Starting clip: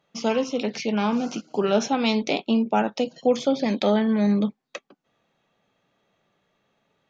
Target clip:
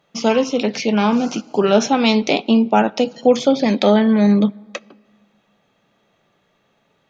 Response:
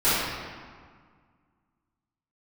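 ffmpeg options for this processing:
-filter_complex "[0:a]asplit=2[a][b];[1:a]atrim=start_sample=2205[c];[b][c]afir=irnorm=-1:irlink=0,volume=-42dB[d];[a][d]amix=inputs=2:normalize=0,volume=7dB"

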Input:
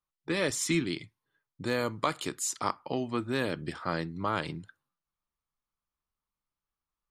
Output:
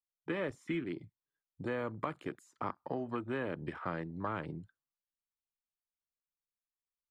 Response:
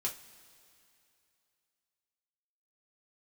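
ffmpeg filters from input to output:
-filter_complex "[0:a]acrossover=split=370|1900[a][b][c];[a]acompressor=threshold=-39dB:ratio=4[d];[b]acompressor=threshold=-35dB:ratio=4[e];[c]acompressor=threshold=-49dB:ratio=4[f];[d][e][f]amix=inputs=3:normalize=0,afwtdn=0.00501,volume=-1dB"

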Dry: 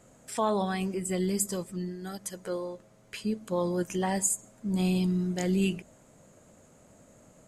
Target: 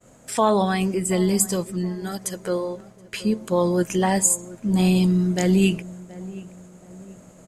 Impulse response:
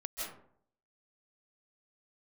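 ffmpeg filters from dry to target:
-filter_complex "[0:a]agate=range=-33dB:threshold=-54dB:ratio=3:detection=peak,asplit=2[a][b];[b]adelay=725,lowpass=f=1.3k:p=1,volume=-18dB,asplit=2[c][d];[d]adelay=725,lowpass=f=1.3k:p=1,volume=0.42,asplit=2[e][f];[f]adelay=725,lowpass=f=1.3k:p=1,volume=0.42[g];[a][c][e][g]amix=inputs=4:normalize=0,volume=8.5dB"

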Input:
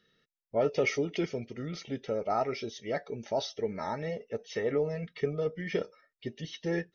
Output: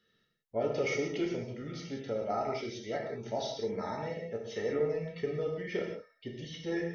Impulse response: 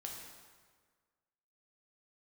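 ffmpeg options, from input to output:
-filter_complex "[0:a]acrossover=split=460|3000[a][b][c];[b]acompressor=threshold=-29dB:ratio=6[d];[a][d][c]amix=inputs=3:normalize=0[e];[1:a]atrim=start_sample=2205,afade=t=out:st=0.24:d=0.01,atrim=end_sample=11025[f];[e][f]afir=irnorm=-1:irlink=0,volume=1dB"

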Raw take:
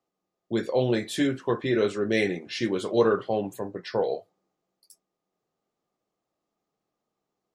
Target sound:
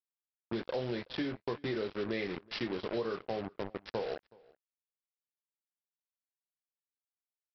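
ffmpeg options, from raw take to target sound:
-filter_complex "[0:a]aresample=11025,acrusher=bits=4:mix=0:aa=0.5,aresample=44100,acompressor=threshold=-28dB:ratio=6,asplit=2[a][b];[b]adelay=373.2,volume=-25dB,highshelf=f=4k:g=-8.4[c];[a][c]amix=inputs=2:normalize=0,volume=-4dB"

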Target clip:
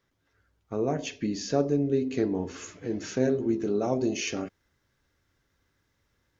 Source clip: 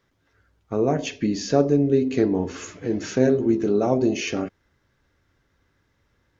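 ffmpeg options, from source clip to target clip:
-af "asetnsamples=n=441:p=0,asendcmd='3.84 highshelf g 9',highshelf=f=4.3k:g=3.5,volume=-6.5dB"

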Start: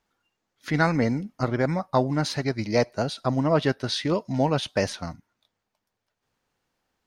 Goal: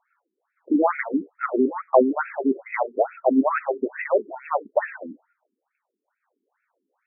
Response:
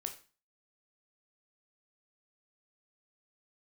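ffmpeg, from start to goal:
-filter_complex "[0:a]asplit=2[a][b];[1:a]atrim=start_sample=2205,atrim=end_sample=6174[c];[b][c]afir=irnorm=-1:irlink=0,volume=-8dB[d];[a][d]amix=inputs=2:normalize=0,afftfilt=real='re*between(b*sr/1024,290*pow(1900/290,0.5+0.5*sin(2*PI*2.3*pts/sr))/1.41,290*pow(1900/290,0.5+0.5*sin(2*PI*2.3*pts/sr))*1.41)':imag='im*between(b*sr/1024,290*pow(1900/290,0.5+0.5*sin(2*PI*2.3*pts/sr))/1.41,290*pow(1900/290,0.5+0.5*sin(2*PI*2.3*pts/sr))*1.41)':win_size=1024:overlap=0.75,volume=7dB"

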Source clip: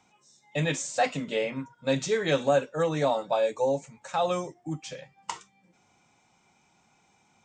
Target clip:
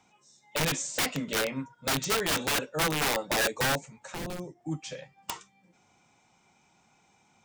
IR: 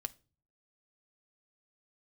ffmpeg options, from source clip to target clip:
-filter_complex "[0:a]aeval=exprs='(mod(11.9*val(0)+1,2)-1)/11.9':c=same,asettb=1/sr,asplit=3[a][b][c];[a]atrim=end=3.924[d];[b]atrim=start=3.92:end=4.61,asetpts=PTS-STARTPTS,afade=t=in:d=0.004:c=qsin,afade=t=out:st=0.686:d=0.004:c=qsin,acrossover=split=400[e][f];[f]acompressor=threshold=-41dB:ratio=5[g];[e][g]amix=inputs=2:normalize=0[h];[c]atrim=start=4.606[i];[d][h]acrossfade=d=0.004:c1=hsin:c2=qsin[j];[j][i]acrossfade=d=0.004:c1=qsin:c2=hsin"

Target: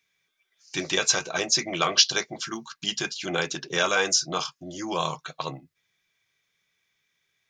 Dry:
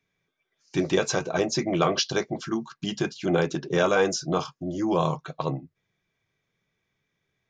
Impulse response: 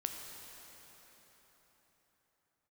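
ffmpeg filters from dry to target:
-af "tiltshelf=f=1.1k:g=-9.5"

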